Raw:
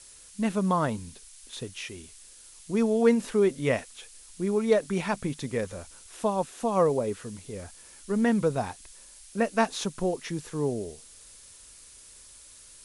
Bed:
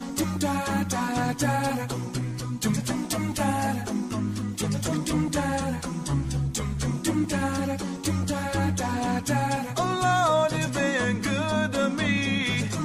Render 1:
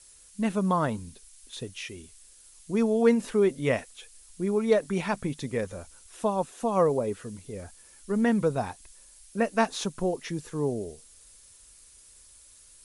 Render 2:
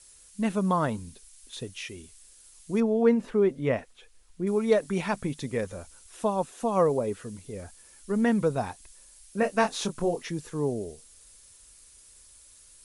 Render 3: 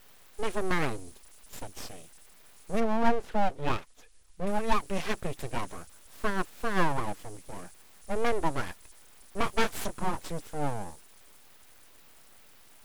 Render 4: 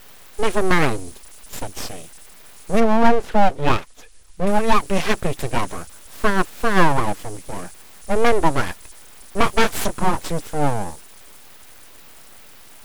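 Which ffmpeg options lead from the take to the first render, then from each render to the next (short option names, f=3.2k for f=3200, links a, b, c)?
-af "afftdn=nr=6:nf=-51"
-filter_complex "[0:a]asettb=1/sr,asplit=3[a][b][c];[a]atrim=end=2.804[d];[b]atrim=start=2.8:end=4.47,asetpts=PTS-STARTPTS,afade=t=in:d=0.004:c=qsin,afade=t=out:st=1.666:d=0.004:c=qsin,lowpass=f=1.6k:p=1[e];[c]atrim=start=4.466[f];[d][e]acrossfade=d=0.004:c1=hsin:c2=qsin[g];[g][f]acrossfade=d=0.004:c1=qsin:c2=hsin,asettb=1/sr,asplit=3[h][i][j];[h]atrim=end=9.404[k];[i]atrim=start=9.4:end=10.23,asetpts=PTS-STARTPTS,afade=t=in:d=0.004:c=qsin,afade=t=out:st=0.826:d=0.004:c=qsin,asplit=2[l][m];[m]adelay=24,volume=-6dB[n];[l][n]amix=inputs=2:normalize=0,atrim=end_sample=36603[o];[j]atrim=start=10.226[p];[k][o]acrossfade=d=0.004:c1=hsin:c2=qsin[q];[q][p]acrossfade=d=0.004:c1=qsin:c2=hsin"
-af "aeval=exprs='abs(val(0))':c=same"
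-af "volume=11.5dB,alimiter=limit=-2dB:level=0:latency=1"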